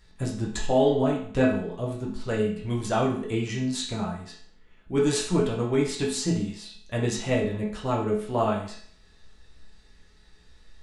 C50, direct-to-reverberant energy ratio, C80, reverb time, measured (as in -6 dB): 4.5 dB, -4.5 dB, 9.0 dB, 0.55 s